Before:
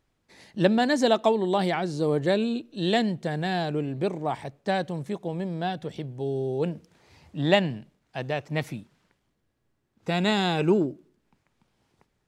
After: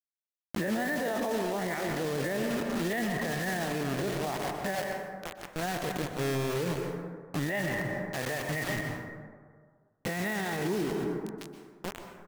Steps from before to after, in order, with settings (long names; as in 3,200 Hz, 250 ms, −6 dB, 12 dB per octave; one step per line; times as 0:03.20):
every bin's largest magnitude spread in time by 60 ms
head-to-tape spacing loss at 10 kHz 36 dB
0:04.75–0:05.56: four-pole ladder high-pass 550 Hz, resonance 55%
parametric band 1,900 Hz +15 dB 0.44 octaves
slap from a distant wall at 200 metres, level −16 dB
bit reduction 5 bits
convolution reverb RT60 1.7 s, pre-delay 112 ms, DRR 6.5 dB
brickwall limiter −21 dBFS, peak gain reduction 16.5 dB
level −2 dB